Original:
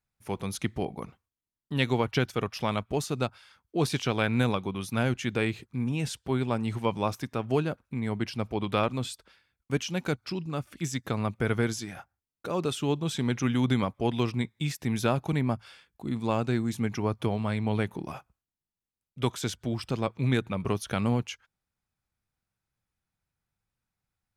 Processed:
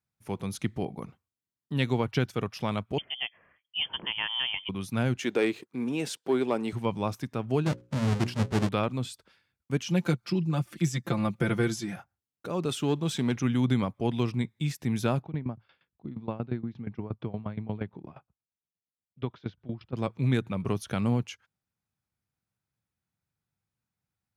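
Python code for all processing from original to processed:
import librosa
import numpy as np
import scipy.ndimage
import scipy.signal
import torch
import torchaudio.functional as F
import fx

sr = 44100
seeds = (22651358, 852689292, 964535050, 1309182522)

y = fx.chain(x, sr, fx.highpass(hz=170.0, slope=6),
    fx.air_absorb(metres=210.0),
    fx.freq_invert(carrier_hz=3300), at=(2.98, 4.69))
y = fx.chain(y, sr, fx.highpass_res(hz=360.0, q=1.5),
    fx.leveller(passes=1), at=(5.19, 6.73))
y = fx.chain(y, sr, fx.halfwave_hold(),
    fx.lowpass(hz=8000.0, slope=12),
    fx.hum_notches(base_hz=60, count=9), at=(7.66, 8.69))
y = fx.chain(y, sr, fx.comb(ms=5.8, depth=0.89),
    fx.band_squash(depth_pct=40), at=(9.86, 11.96))
y = fx.chain(y, sr, fx.low_shelf(hz=120.0, db=-10.5),
    fx.leveller(passes=1), at=(12.69, 13.36))
y = fx.chain(y, sr, fx.cheby2_lowpass(hz=8000.0, order=4, stop_db=40),
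    fx.high_shelf(hz=2200.0, db=-9.0),
    fx.tremolo_decay(direction='decaying', hz=8.5, depth_db=18), at=(15.22, 19.97))
y = scipy.signal.sosfilt(scipy.signal.butter(2, 110.0, 'highpass', fs=sr, output='sos'), y)
y = fx.low_shelf(y, sr, hz=220.0, db=8.5)
y = y * librosa.db_to_amplitude(-3.5)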